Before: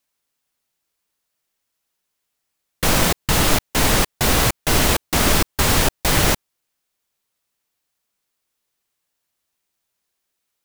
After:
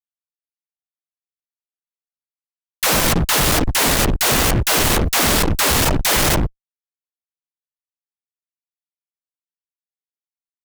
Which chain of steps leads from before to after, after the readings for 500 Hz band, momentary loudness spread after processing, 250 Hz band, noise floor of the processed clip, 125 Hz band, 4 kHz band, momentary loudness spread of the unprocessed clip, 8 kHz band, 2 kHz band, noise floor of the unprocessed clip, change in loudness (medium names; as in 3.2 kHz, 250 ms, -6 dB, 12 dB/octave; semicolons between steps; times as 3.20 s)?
+1.5 dB, 3 LU, +1.5 dB, under -85 dBFS, +1.5 dB, +2.5 dB, 1 LU, +3.0 dB, +2.0 dB, -77 dBFS, +2.0 dB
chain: phase dispersion lows, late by 121 ms, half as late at 340 Hz; fuzz box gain 33 dB, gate -34 dBFS; trim -1 dB